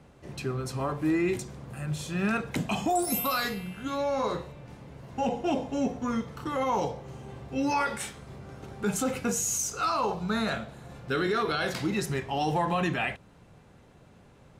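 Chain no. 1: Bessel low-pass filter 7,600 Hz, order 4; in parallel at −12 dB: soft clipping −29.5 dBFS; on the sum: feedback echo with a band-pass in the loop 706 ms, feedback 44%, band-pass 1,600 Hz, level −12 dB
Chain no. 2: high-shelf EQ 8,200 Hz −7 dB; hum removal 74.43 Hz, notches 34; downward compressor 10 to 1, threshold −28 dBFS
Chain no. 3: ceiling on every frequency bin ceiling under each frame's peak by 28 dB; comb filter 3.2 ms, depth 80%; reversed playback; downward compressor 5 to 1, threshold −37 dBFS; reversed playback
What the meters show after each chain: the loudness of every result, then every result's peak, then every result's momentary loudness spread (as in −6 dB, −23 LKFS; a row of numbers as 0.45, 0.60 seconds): −29.0, −34.0, −38.5 LKFS; −16.0, −19.5, −23.0 dBFS; 14, 12, 7 LU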